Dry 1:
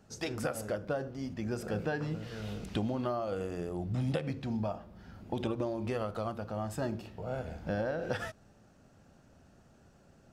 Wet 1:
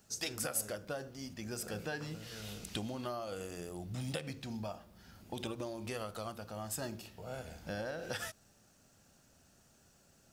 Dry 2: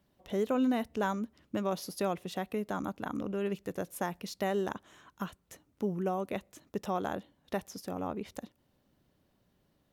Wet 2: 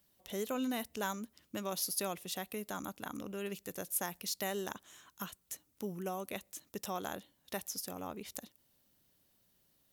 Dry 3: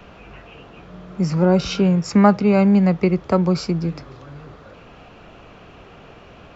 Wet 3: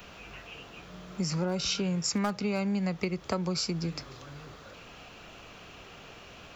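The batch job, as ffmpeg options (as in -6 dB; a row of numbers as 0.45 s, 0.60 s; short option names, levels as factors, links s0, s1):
-af "volume=2.11,asoftclip=hard,volume=0.473,crystalizer=i=6:c=0,acompressor=threshold=0.112:ratio=6,volume=0.398"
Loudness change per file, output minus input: -5.0 LU, -4.5 LU, -13.0 LU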